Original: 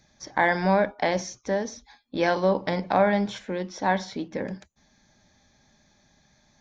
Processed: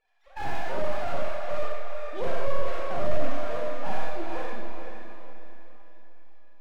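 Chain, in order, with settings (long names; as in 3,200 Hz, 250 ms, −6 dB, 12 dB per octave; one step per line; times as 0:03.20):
three sine waves on the formant tracks
half-wave rectification
on a send: feedback delay with all-pass diffusion 453 ms, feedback 41%, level −7 dB
on the sum: four-comb reverb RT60 1 s, combs from 28 ms, DRR −3 dB
slew-rate limiting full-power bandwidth 46 Hz
level −5 dB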